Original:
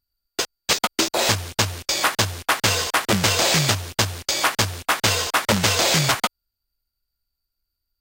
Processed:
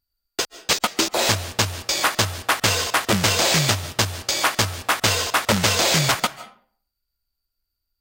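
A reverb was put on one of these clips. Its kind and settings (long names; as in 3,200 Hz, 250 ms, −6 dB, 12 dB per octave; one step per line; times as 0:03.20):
comb and all-pass reverb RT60 0.51 s, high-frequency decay 0.65×, pre-delay 110 ms, DRR 16 dB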